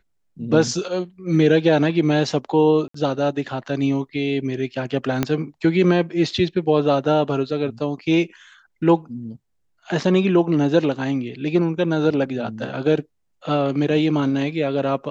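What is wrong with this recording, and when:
0:02.88–0:02.94: drop-out 64 ms
0:05.23: click −6 dBFS

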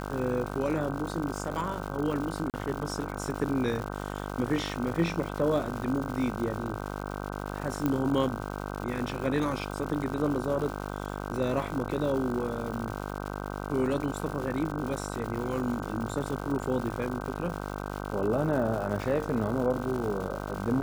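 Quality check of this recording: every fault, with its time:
mains buzz 50 Hz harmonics 31 −36 dBFS
surface crackle 260 per second −35 dBFS
0:02.50–0:02.54: drop-out 38 ms
0:07.86: click −15 dBFS

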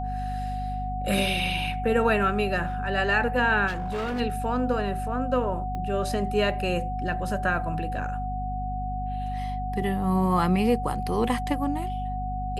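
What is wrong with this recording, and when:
mains hum 50 Hz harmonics 5 −32 dBFS
whistle 740 Hz −31 dBFS
0:03.67–0:04.21: clipping −26 dBFS
0:05.75: click −22 dBFS

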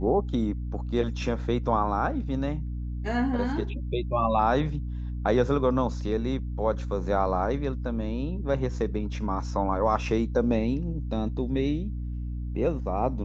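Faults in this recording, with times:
mains hum 60 Hz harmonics 5 −32 dBFS

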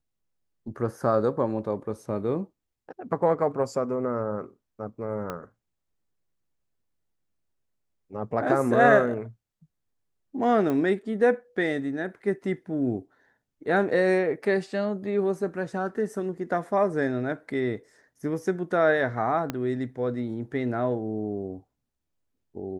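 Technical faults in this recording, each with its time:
0:05.30: click −18 dBFS
0:10.70: click −18 dBFS
0:19.50: click −14 dBFS

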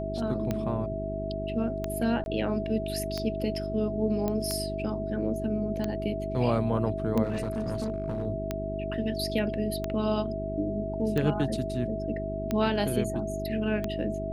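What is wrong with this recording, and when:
mains hum 50 Hz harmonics 8 −35 dBFS
scratch tick 45 rpm −16 dBFS
whistle 650 Hz −33 dBFS
0:02.24–0:02.26: drop-out 21 ms
0:04.28: click −17 dBFS
0:07.23–0:08.26: clipping −26 dBFS

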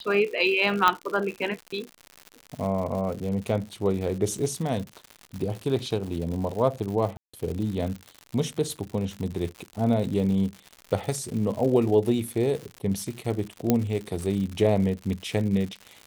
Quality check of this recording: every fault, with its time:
surface crackle 150 per second −32 dBFS
0:00.88: click −6 dBFS
0:07.17–0:07.33: drop-out 165 ms
0:13.70: click −7 dBFS

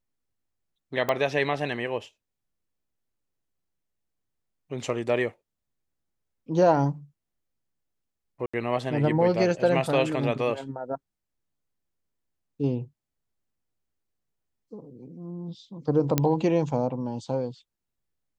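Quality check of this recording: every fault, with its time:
0:01.09: click −12 dBFS
0:08.46–0:08.54: drop-out 75 ms
0:16.18: click −7 dBFS

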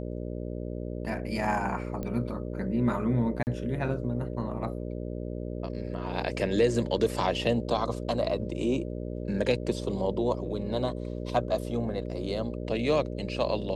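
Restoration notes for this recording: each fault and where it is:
mains buzz 60 Hz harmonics 10 −35 dBFS
0:02.03: click −22 dBFS
0:03.43–0:03.47: drop-out 39 ms

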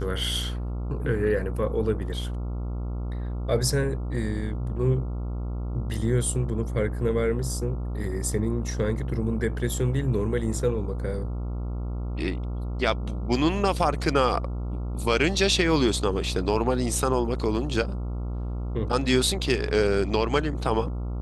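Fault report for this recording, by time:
mains buzz 60 Hz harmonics 23 −30 dBFS

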